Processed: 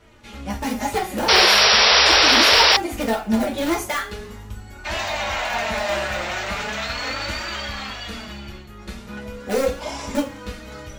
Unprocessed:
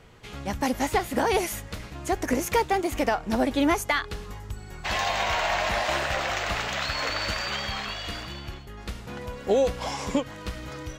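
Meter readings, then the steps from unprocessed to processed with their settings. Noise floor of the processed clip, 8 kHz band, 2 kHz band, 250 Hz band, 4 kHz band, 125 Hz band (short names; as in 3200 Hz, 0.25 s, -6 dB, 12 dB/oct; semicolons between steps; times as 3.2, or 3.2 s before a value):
-40 dBFS, +9.5 dB, +9.0 dB, +3.0 dB, +15.0 dB, +1.0 dB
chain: in parallel at -5 dB: wrapped overs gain 15 dB; on the sum: two-slope reverb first 0.32 s, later 1.9 s, from -26 dB, DRR -3 dB; flange 0.4 Hz, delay 3 ms, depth 2.7 ms, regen +33%; painted sound noise, 1.28–2.77, 390–5800 Hz -11 dBFS; gain -3 dB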